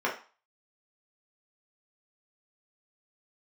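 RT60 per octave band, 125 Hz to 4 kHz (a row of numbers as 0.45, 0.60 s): 0.25, 0.30, 0.30, 0.40, 0.35, 0.35 s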